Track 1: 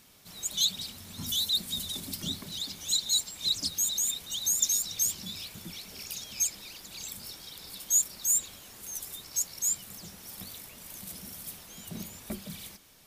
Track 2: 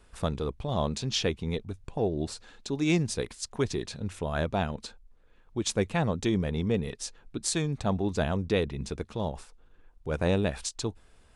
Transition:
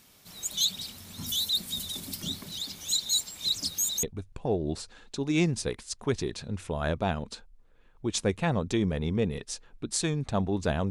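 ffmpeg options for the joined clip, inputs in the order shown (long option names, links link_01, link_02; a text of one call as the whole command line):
ffmpeg -i cue0.wav -i cue1.wav -filter_complex "[0:a]apad=whole_dur=10.9,atrim=end=10.9,atrim=end=4.032[link_01];[1:a]atrim=start=1.548:end=8.42[link_02];[link_01][link_02]acrossfade=duration=0.004:curve1=hsin:curve2=hsin" out.wav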